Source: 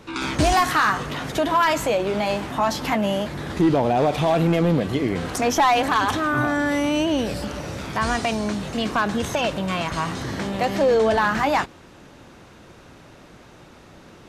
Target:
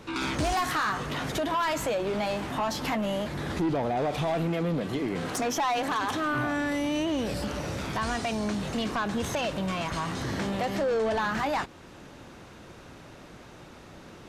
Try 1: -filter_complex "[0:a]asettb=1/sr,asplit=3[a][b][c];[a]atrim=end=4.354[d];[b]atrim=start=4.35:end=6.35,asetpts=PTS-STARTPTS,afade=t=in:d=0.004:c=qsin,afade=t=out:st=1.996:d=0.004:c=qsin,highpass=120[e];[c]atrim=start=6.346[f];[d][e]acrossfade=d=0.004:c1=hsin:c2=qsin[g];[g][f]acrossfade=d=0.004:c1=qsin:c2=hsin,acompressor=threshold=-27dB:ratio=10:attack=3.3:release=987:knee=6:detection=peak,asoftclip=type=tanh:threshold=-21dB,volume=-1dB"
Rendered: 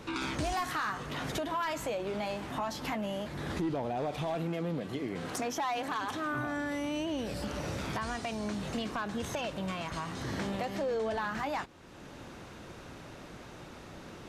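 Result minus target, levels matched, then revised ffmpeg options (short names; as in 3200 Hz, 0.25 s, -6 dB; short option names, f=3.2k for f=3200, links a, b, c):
compressor: peak gain reduction +8.5 dB
-filter_complex "[0:a]asettb=1/sr,asplit=3[a][b][c];[a]atrim=end=4.354[d];[b]atrim=start=4.35:end=6.35,asetpts=PTS-STARTPTS,afade=t=in:d=0.004:c=qsin,afade=t=out:st=1.996:d=0.004:c=qsin,highpass=120[e];[c]atrim=start=6.346[f];[d][e]acrossfade=d=0.004:c1=hsin:c2=qsin[g];[g][f]acrossfade=d=0.004:c1=qsin:c2=hsin,acompressor=threshold=-17.5dB:ratio=10:attack=3.3:release=987:knee=6:detection=peak,asoftclip=type=tanh:threshold=-21dB,volume=-1dB"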